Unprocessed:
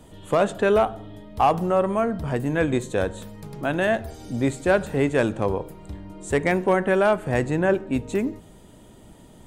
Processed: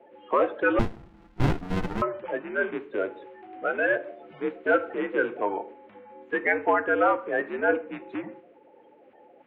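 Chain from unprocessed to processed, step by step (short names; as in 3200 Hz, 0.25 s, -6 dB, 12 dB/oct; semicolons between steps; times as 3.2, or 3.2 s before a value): bin magnitudes rounded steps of 30 dB; on a send at -11 dB: reverb, pre-delay 5 ms; on the sum: mistuned SSB -89 Hz 480–2700 Hz; 0.79–2.02 running maximum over 65 samples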